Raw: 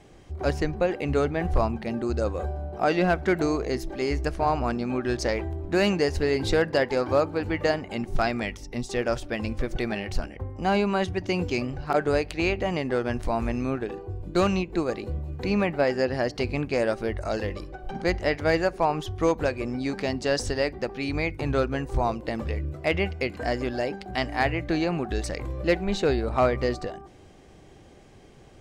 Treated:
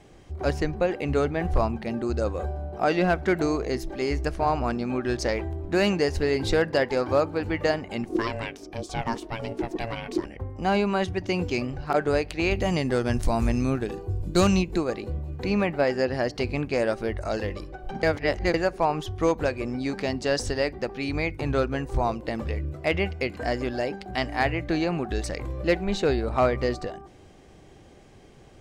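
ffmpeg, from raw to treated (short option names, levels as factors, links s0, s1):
-filter_complex "[0:a]asplit=3[s0][s1][s2];[s0]afade=t=out:st=8.08:d=0.02[s3];[s1]aeval=exprs='val(0)*sin(2*PI*340*n/s)':c=same,afade=t=in:st=8.08:d=0.02,afade=t=out:st=10.24:d=0.02[s4];[s2]afade=t=in:st=10.24:d=0.02[s5];[s3][s4][s5]amix=inputs=3:normalize=0,asettb=1/sr,asplit=3[s6][s7][s8];[s6]atrim=end=12.514[s9];[s7]atrim=start=12.51:end=14.78,asetpts=PTS-STARTPTS,afade=t=in:d=0.004:c=qsin,afade=t=out:st=2.266:d=0.004:c=qsin,bass=f=250:g=6,treble=f=4000:g=11[s10];[s8]atrim=start=14.776[s11];[s9][s10]acrossfade=d=0.004:c1=hsin:c2=qsin[s12];[s12][s11]acrossfade=d=0.004:c1=qsin:c2=hsin,asplit=3[s13][s14][s15];[s13]atrim=end=18.032[s16];[s14]atrim=start=18.028:end=18.542,asetpts=PTS-STARTPTS,areverse[s17];[s15]atrim=start=18.538[s18];[s16][s17]acrossfade=d=0.004:c1=hsin:c2=hsin[s19];[s19][s18]acrossfade=d=0.004:c1=hsin:c2=hsin"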